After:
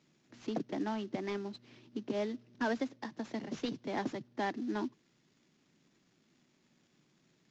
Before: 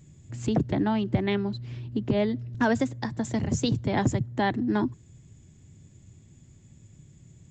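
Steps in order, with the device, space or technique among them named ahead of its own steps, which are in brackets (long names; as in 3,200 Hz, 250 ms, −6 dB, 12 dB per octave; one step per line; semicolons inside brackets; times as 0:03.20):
early wireless headset (high-pass filter 220 Hz 24 dB per octave; variable-slope delta modulation 32 kbit/s)
level −8.5 dB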